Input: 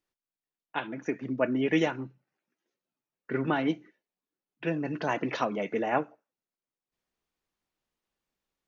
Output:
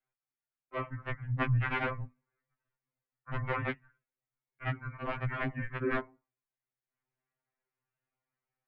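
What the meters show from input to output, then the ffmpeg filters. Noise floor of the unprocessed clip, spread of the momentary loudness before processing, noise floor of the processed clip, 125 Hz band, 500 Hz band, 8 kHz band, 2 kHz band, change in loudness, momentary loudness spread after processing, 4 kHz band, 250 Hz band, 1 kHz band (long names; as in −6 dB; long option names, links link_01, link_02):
below −85 dBFS, 11 LU, below −85 dBFS, +5.5 dB, −8.5 dB, can't be measured, −1.5 dB, −4.5 dB, 12 LU, −7.5 dB, −10.5 dB, −5.0 dB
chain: -af "aeval=exprs='(mod(9.44*val(0)+1,2)-1)/9.44':channel_layout=same,aemphasis=mode=production:type=75fm,highpass=frequency=210:width_type=q:width=0.5412,highpass=frequency=210:width_type=q:width=1.307,lowpass=frequency=2600:width_type=q:width=0.5176,lowpass=frequency=2600:width_type=q:width=0.7071,lowpass=frequency=2600:width_type=q:width=1.932,afreqshift=-380,afftfilt=real='re*2.45*eq(mod(b,6),0)':imag='im*2.45*eq(mod(b,6),0)':win_size=2048:overlap=0.75"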